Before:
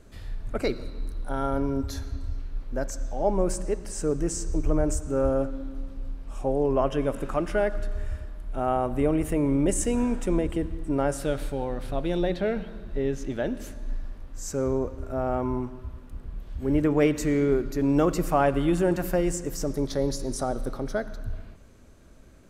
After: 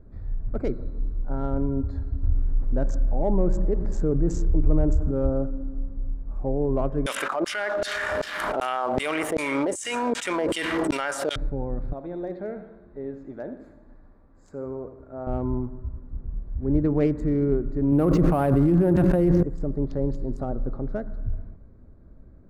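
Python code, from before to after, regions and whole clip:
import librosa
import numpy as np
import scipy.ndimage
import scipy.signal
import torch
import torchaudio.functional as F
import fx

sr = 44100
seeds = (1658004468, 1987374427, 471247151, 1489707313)

y = fx.chain(x, sr, fx.brickwall_lowpass(high_hz=7800.0),
    fx.env_flatten(amount_pct=50), at=(2.23, 5.11))
y = fx.chain(y, sr, fx.notch(hz=2600.0, q=15.0),
    fx.filter_lfo_highpass(shape='saw_down', hz=2.6, low_hz=460.0, high_hz=4800.0, q=1.3),
    fx.env_flatten(amount_pct=100), at=(7.06, 11.36))
y = fx.chain(y, sr, fx.highpass(hz=620.0, slope=6),
    fx.echo_feedback(ms=77, feedback_pct=46, wet_db=-10.5), at=(11.93, 15.27))
y = fx.chain(y, sr, fx.resample_bad(factor=4, down='filtered', up='hold'),
    fx.highpass(hz=63.0, slope=12),
    fx.env_flatten(amount_pct=100), at=(17.92, 19.43))
y = fx.wiener(y, sr, points=15)
y = fx.lowpass(y, sr, hz=3500.0, slope=6)
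y = fx.low_shelf(y, sr, hz=350.0, db=10.5)
y = F.gain(torch.from_numpy(y), -5.5).numpy()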